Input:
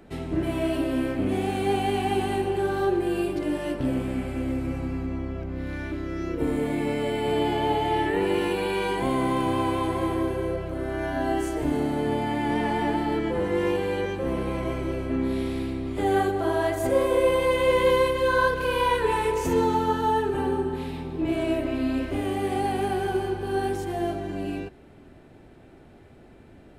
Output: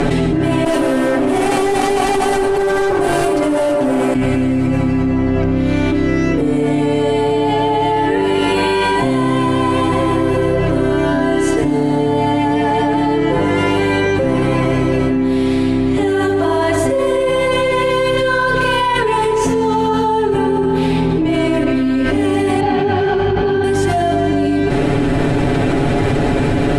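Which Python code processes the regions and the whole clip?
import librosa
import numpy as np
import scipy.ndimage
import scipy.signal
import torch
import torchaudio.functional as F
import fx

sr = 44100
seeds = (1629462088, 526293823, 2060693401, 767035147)

y = fx.chain(x, sr, fx.highpass(hz=570.0, slope=12),
    fx.clip_hard(threshold_db=-35.0),
    fx.peak_eq(hz=3400.0, db=-13.5, octaves=2.9), at=(0.64, 4.15))
y = fx.chain(y, sr, fx.bessel_lowpass(hz=4000.0, order=8),
    fx.detune_double(cents=50), at=(22.6, 23.64))
y = scipy.signal.sosfilt(scipy.signal.butter(4, 10000.0, 'lowpass', fs=sr, output='sos'), y)
y = y + 0.78 * np.pad(y, (int(7.1 * sr / 1000.0), 0))[:len(y)]
y = fx.env_flatten(y, sr, amount_pct=100)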